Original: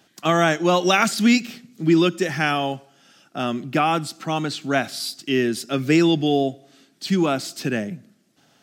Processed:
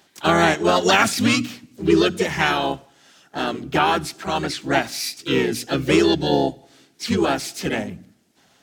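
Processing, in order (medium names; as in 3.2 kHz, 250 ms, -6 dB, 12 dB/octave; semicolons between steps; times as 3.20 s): bass shelf 280 Hz -3.5 dB; hum notches 60/120/180/240/300 Hz; harmony voices -12 st -9 dB, +3 st -5 dB, +4 st -7 dB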